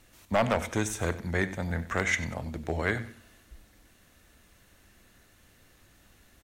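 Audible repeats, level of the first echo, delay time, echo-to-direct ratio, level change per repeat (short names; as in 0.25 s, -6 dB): 2, -15.5 dB, 94 ms, -15.0 dB, -9.5 dB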